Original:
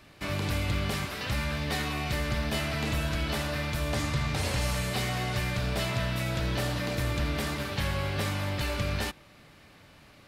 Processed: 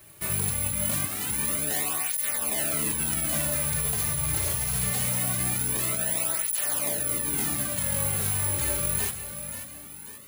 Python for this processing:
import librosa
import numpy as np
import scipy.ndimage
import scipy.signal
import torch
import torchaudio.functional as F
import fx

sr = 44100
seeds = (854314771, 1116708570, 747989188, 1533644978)

p1 = fx.over_compress(x, sr, threshold_db=-30.0, ratio=-1.0)
p2 = (np.kron(p1[::4], np.eye(4)[0]) * 4)[:len(p1)]
p3 = p2 + fx.echo_feedback(p2, sr, ms=536, feedback_pct=48, wet_db=-10.0, dry=0)
y = fx.flanger_cancel(p3, sr, hz=0.23, depth_ms=4.2)